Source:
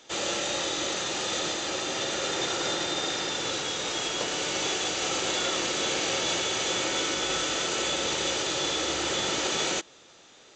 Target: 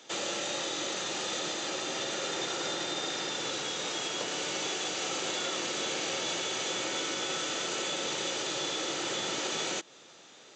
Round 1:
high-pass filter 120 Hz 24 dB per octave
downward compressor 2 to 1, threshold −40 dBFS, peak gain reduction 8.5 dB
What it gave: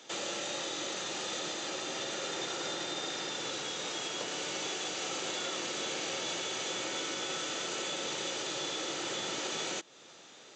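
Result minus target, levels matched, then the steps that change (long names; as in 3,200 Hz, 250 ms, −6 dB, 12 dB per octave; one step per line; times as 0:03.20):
downward compressor: peak gain reduction +3 dB
change: downward compressor 2 to 1, threshold −34 dBFS, peak gain reduction 5.5 dB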